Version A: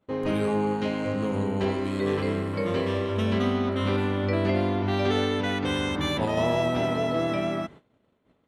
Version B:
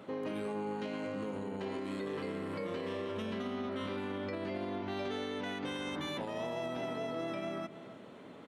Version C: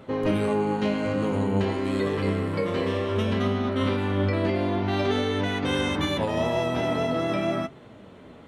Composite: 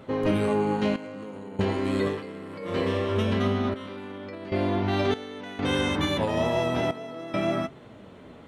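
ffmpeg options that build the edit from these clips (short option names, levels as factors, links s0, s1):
-filter_complex "[1:a]asplit=5[s0][s1][s2][s3][s4];[2:a]asplit=6[s5][s6][s7][s8][s9][s10];[s5]atrim=end=0.962[s11];[s0]atrim=start=0.958:end=1.592[s12];[s6]atrim=start=1.588:end=2.23[s13];[s1]atrim=start=2.07:end=2.77[s14];[s7]atrim=start=2.61:end=3.742[s15];[s2]atrim=start=3.738:end=4.522[s16];[s8]atrim=start=4.518:end=5.142[s17];[s3]atrim=start=5.138:end=5.592[s18];[s9]atrim=start=5.588:end=6.912[s19];[s4]atrim=start=6.908:end=7.342[s20];[s10]atrim=start=7.338[s21];[s11][s12]acrossfade=d=0.004:c1=hsin:c2=hsin[s22];[s22][s13]acrossfade=d=0.004:c1=hsin:c2=hsin[s23];[s23][s14]acrossfade=d=0.16:c1=tri:c2=tri[s24];[s24][s15]acrossfade=d=0.16:c1=tri:c2=tri[s25];[s25][s16]acrossfade=d=0.004:c1=hsin:c2=hsin[s26];[s26][s17]acrossfade=d=0.004:c1=hsin:c2=hsin[s27];[s27][s18]acrossfade=d=0.004:c1=hsin:c2=hsin[s28];[s28][s19]acrossfade=d=0.004:c1=hsin:c2=hsin[s29];[s29][s20]acrossfade=d=0.004:c1=hsin:c2=hsin[s30];[s30][s21]acrossfade=d=0.004:c1=hsin:c2=hsin"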